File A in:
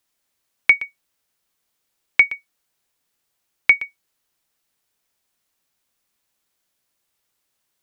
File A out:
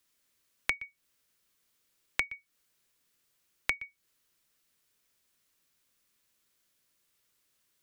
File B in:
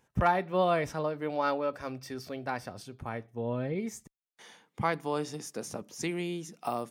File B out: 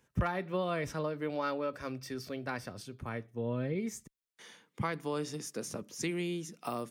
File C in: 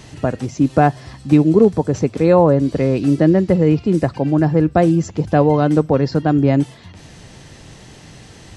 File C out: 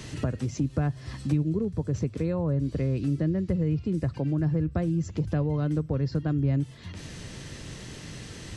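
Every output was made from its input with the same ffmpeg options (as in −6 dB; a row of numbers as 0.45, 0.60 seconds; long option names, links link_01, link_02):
-filter_complex "[0:a]equalizer=frequency=780:width_type=o:width=0.59:gain=-8,acrossover=split=120[link_01][link_02];[link_02]acompressor=threshold=-29dB:ratio=8[link_03];[link_01][link_03]amix=inputs=2:normalize=0"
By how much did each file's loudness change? −17.0, −4.0, −12.5 LU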